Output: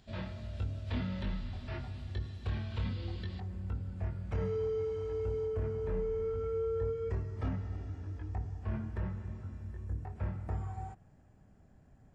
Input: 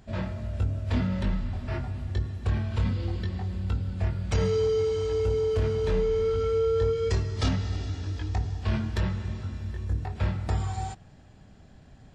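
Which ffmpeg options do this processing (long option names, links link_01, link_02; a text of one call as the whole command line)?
ffmpeg -i in.wav -filter_complex "[0:a]acrossover=split=3100[link_01][link_02];[link_02]acompressor=threshold=-58dB:ratio=4:attack=1:release=60[link_03];[link_01][link_03]amix=inputs=2:normalize=0,asetnsamples=nb_out_samples=441:pad=0,asendcmd='3.4 equalizer g -8;5.47 equalizer g -14',equalizer=frequency=3800:width=1.1:gain=10,volume=-9dB" out.wav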